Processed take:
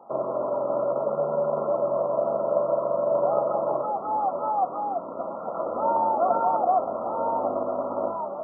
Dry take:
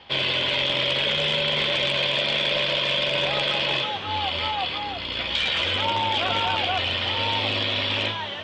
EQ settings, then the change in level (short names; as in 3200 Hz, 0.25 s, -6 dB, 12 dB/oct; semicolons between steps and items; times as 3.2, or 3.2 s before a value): HPF 180 Hz 24 dB/oct; brick-wall FIR low-pass 1400 Hz; bell 660 Hz +10.5 dB 0.45 oct; 0.0 dB